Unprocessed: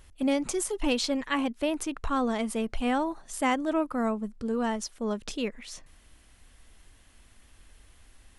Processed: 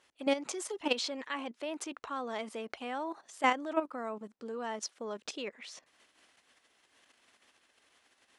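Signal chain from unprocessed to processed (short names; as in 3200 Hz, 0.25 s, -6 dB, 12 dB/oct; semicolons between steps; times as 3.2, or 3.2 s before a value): level quantiser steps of 12 dB; BPF 390–6800 Hz; gain +2 dB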